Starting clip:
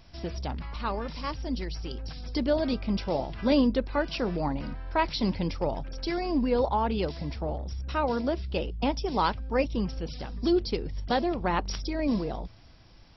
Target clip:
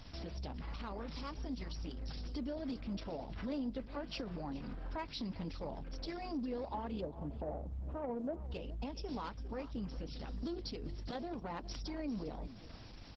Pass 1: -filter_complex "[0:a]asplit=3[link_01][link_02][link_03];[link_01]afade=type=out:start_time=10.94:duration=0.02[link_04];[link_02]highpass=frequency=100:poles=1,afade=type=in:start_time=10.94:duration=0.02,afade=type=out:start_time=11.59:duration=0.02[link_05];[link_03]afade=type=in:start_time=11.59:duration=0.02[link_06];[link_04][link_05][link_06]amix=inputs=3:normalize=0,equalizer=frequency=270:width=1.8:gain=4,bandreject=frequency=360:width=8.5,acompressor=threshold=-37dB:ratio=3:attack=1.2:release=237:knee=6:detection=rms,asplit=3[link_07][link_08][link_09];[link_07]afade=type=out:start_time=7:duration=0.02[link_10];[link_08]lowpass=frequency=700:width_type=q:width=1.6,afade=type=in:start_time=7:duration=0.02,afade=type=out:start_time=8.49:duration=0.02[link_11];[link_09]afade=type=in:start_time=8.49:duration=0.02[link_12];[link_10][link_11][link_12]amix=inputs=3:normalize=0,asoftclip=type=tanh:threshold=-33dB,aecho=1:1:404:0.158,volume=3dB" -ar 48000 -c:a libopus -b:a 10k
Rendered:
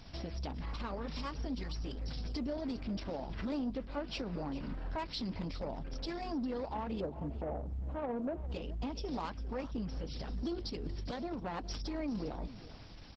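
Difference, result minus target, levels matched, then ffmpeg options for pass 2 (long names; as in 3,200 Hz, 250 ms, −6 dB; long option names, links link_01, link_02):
downward compressor: peak gain reduction −4 dB
-filter_complex "[0:a]asplit=3[link_01][link_02][link_03];[link_01]afade=type=out:start_time=10.94:duration=0.02[link_04];[link_02]highpass=frequency=100:poles=1,afade=type=in:start_time=10.94:duration=0.02,afade=type=out:start_time=11.59:duration=0.02[link_05];[link_03]afade=type=in:start_time=11.59:duration=0.02[link_06];[link_04][link_05][link_06]amix=inputs=3:normalize=0,equalizer=frequency=270:width=1.8:gain=4,bandreject=frequency=360:width=8.5,acompressor=threshold=-43dB:ratio=3:attack=1.2:release=237:knee=6:detection=rms,asplit=3[link_07][link_08][link_09];[link_07]afade=type=out:start_time=7:duration=0.02[link_10];[link_08]lowpass=frequency=700:width_type=q:width=1.6,afade=type=in:start_time=7:duration=0.02,afade=type=out:start_time=8.49:duration=0.02[link_11];[link_09]afade=type=in:start_time=8.49:duration=0.02[link_12];[link_10][link_11][link_12]amix=inputs=3:normalize=0,asoftclip=type=tanh:threshold=-33dB,aecho=1:1:404:0.158,volume=3dB" -ar 48000 -c:a libopus -b:a 10k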